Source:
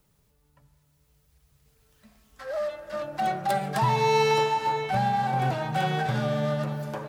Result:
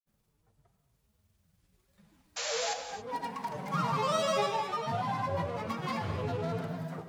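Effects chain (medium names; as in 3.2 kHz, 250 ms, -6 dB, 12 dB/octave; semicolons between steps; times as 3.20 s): granulator, pitch spread up and down by 7 st; painted sound noise, 2.36–2.74 s, 460–7500 Hz -29 dBFS; gated-style reverb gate 300 ms flat, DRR 7 dB; trim -7 dB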